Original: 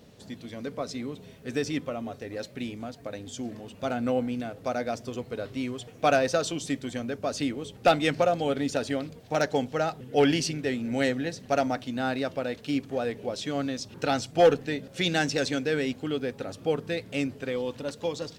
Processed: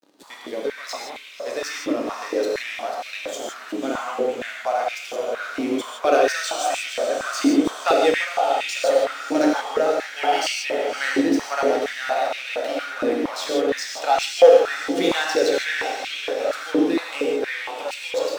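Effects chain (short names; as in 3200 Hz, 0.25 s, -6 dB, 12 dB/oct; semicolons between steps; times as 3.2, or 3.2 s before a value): in parallel at -2.5 dB: negative-ratio compressor -36 dBFS; on the sum: crossover distortion -39.5 dBFS; diffused feedback echo 0.579 s, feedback 57%, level -8.5 dB; non-linear reverb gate 0.19 s flat, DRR -1.5 dB; stepped high-pass 4.3 Hz 310–2500 Hz; gain -1.5 dB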